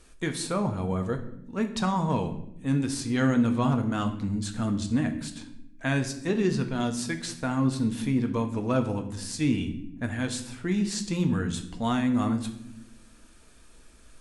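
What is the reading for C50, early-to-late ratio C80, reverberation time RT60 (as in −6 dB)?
11.0 dB, 14.0 dB, 0.85 s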